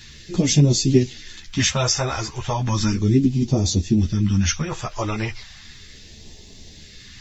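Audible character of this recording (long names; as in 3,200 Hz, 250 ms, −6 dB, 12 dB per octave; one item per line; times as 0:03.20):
phaser sweep stages 2, 0.35 Hz, lowest notch 240–1,400 Hz
a quantiser's noise floor 12 bits, dither none
a shimmering, thickened sound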